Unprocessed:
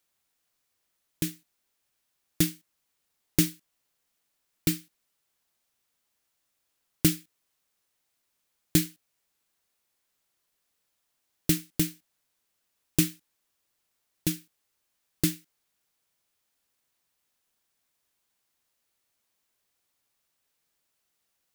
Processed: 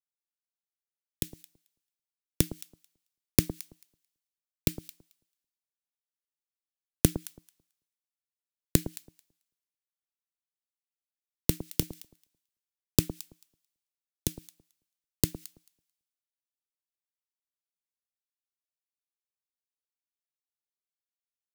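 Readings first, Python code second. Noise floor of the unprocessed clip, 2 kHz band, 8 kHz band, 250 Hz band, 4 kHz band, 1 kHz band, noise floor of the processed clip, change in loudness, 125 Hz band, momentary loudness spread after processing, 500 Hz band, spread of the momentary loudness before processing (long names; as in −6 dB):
−78 dBFS, −5.0 dB, −1.5 dB, −3.5 dB, −2.5 dB, +3.0 dB, below −85 dBFS, −2.0 dB, −0.5 dB, 20 LU, +2.5 dB, 8 LU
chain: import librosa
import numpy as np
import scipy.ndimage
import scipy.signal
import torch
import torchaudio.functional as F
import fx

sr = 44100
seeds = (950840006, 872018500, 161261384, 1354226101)

y = fx.gate_flip(x, sr, shuts_db=-21.0, range_db=-25)
y = fx.echo_alternate(y, sr, ms=110, hz=1100.0, feedback_pct=54, wet_db=-11)
y = fx.band_widen(y, sr, depth_pct=100)
y = F.gain(torch.from_numpy(y), 2.5).numpy()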